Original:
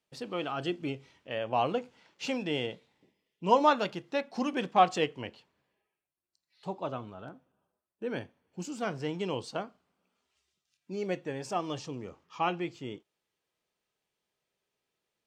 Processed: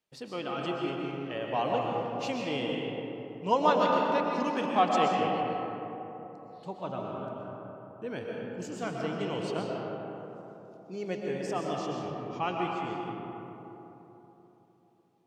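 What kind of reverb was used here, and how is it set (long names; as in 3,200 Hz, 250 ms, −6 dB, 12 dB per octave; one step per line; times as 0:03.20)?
comb and all-pass reverb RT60 3.7 s, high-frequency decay 0.35×, pre-delay 85 ms, DRR −1.5 dB
level −2.5 dB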